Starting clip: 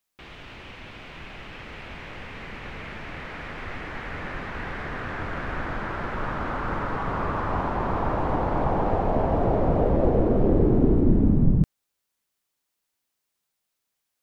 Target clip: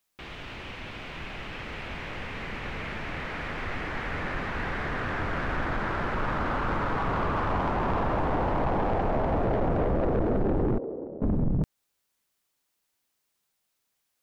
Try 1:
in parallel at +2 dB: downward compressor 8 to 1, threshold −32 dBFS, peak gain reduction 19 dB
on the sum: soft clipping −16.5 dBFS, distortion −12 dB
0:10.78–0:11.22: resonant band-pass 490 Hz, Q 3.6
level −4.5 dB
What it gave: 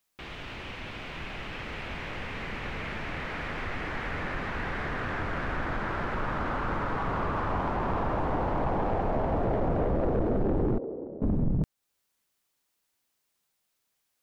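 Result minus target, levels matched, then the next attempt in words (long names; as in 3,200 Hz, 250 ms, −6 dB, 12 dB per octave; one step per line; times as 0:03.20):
downward compressor: peak gain reduction +9 dB
in parallel at +2 dB: downward compressor 8 to 1, threshold −21.5 dBFS, peak gain reduction 9.5 dB
on the sum: soft clipping −16.5 dBFS, distortion −10 dB
0:10.78–0:11.22: resonant band-pass 490 Hz, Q 3.6
level −4.5 dB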